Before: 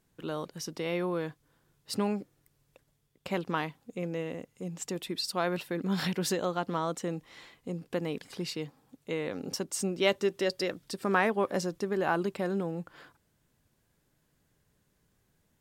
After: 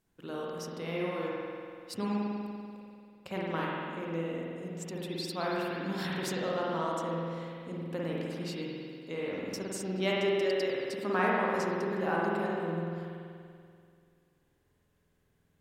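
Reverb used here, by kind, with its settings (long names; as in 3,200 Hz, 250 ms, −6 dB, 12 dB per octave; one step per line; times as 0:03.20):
spring reverb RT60 2.3 s, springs 48 ms, chirp 65 ms, DRR −5 dB
level −6.5 dB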